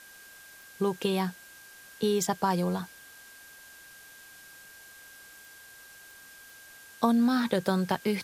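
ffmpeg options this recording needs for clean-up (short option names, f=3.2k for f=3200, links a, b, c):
-af "adeclick=t=4,bandreject=f=1.6k:w=30,afwtdn=0.0025"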